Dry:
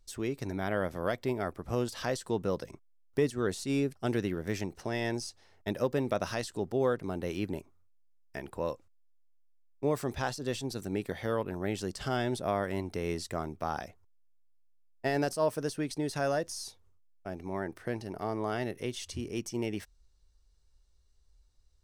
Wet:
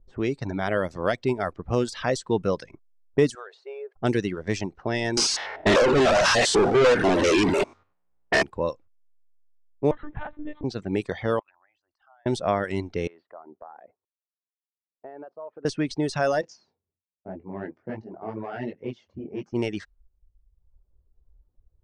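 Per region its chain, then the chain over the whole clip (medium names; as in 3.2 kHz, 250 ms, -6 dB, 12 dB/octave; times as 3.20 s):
3.35–3.96 s: brick-wall FIR high-pass 380 Hz + compression 20:1, threshold -38 dBFS
5.17–8.43 s: spectrogram pixelated in time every 100 ms + overdrive pedal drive 37 dB, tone 4.6 kHz, clips at -18 dBFS
9.91–10.64 s: median filter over 15 samples + compression, threshold -34 dBFS + monotone LPC vocoder at 8 kHz 300 Hz
11.39–12.26 s: resonances exaggerated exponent 1.5 + inverse Chebyshev high-pass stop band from 470 Hz + compression 5:1, threshold -53 dBFS
13.07–15.65 s: high-pass 480 Hz + compression 3:1, threshold -45 dBFS + distance through air 360 m
16.41–19.53 s: valve stage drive 27 dB, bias 0.5 + cabinet simulation 120–7100 Hz, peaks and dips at 220 Hz +4 dB, 1.2 kHz -4 dB, 3.7 kHz -4 dB + detune thickener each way 44 cents
whole clip: low-pass 8.4 kHz 24 dB/octave; level-controlled noise filter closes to 560 Hz, open at -27.5 dBFS; reverb removal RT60 1 s; trim +8 dB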